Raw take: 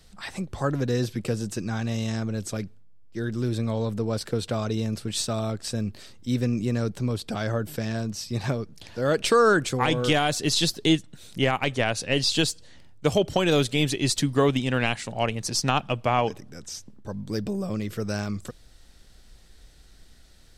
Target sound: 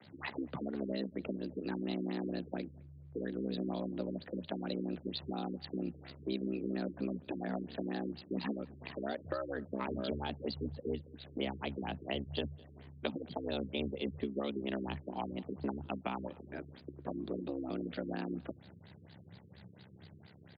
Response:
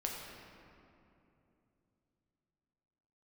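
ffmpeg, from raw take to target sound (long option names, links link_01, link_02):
-filter_complex "[0:a]lowshelf=frequency=96:gain=-8.5,afreqshift=110,acrossover=split=1300[link_01][link_02];[link_02]acompressor=threshold=-38dB:ratio=4[link_03];[link_01][link_03]amix=inputs=2:normalize=0,aeval=exprs='val(0)*sin(2*PI*33*n/s)':channel_layout=same,acrossover=split=160|3000[link_04][link_05][link_06];[link_05]acompressor=threshold=-41dB:ratio=10[link_07];[link_04][link_07][link_06]amix=inputs=3:normalize=0,asplit=2[link_08][link_09];[link_09]adelay=210,lowpass=frequency=4000:poles=1,volume=-24dB,asplit=2[link_10][link_11];[link_11]adelay=210,lowpass=frequency=4000:poles=1,volume=0.37[link_12];[link_10][link_12]amix=inputs=2:normalize=0[link_13];[link_08][link_13]amix=inputs=2:normalize=0,afftfilt=real='re*lt(b*sr/1024,450*pow(5000/450,0.5+0.5*sin(2*PI*4.3*pts/sr)))':imag='im*lt(b*sr/1024,450*pow(5000/450,0.5+0.5*sin(2*PI*4.3*pts/sr)))':win_size=1024:overlap=0.75,volume=4.5dB"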